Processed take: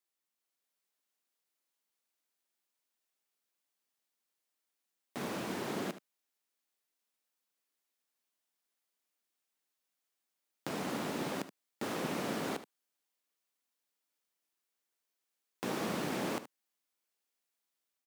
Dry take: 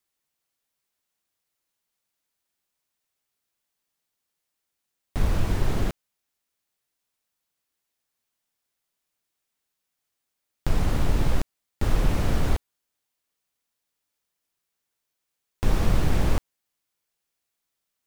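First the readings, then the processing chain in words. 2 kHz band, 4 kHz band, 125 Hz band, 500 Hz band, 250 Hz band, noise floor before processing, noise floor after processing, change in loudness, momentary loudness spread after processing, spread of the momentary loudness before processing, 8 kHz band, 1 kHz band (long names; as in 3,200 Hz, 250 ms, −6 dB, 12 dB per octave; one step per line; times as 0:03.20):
−5.0 dB, −5.0 dB, −20.5 dB, −5.0 dB, −7.0 dB, −82 dBFS, below −85 dBFS, −10.5 dB, 9 LU, 8 LU, −5.0 dB, −5.0 dB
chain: high-pass filter 200 Hz 24 dB per octave
automatic gain control gain up to 3 dB
on a send: single-tap delay 75 ms −13.5 dB
on the sum: level −8 dB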